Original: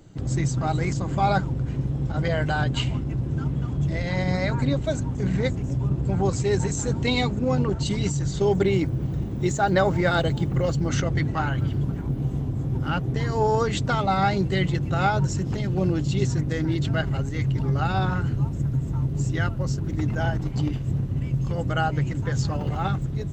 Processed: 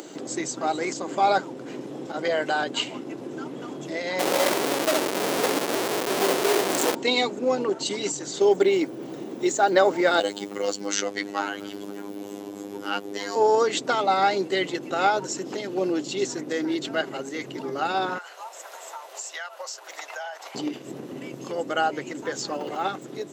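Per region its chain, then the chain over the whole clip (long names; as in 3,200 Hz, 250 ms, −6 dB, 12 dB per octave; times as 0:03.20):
0:04.19–0:06.95: multi-tap delay 62/84/98/865 ms −5.5/−16.5/−16.5/−9 dB + comparator with hysteresis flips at −28.5 dBFS + double-tracking delay 26 ms −11.5 dB
0:10.20–0:13.36: phases set to zero 101 Hz + high-shelf EQ 3,500 Hz +7.5 dB
0:18.18–0:20.55: Butterworth high-pass 630 Hz + downward compressor 2.5 to 1, threshold −37 dBFS
whole clip: high-pass filter 320 Hz 24 dB per octave; parametric band 1,400 Hz −4 dB 2.3 octaves; upward compression, threshold −35 dBFS; level +5 dB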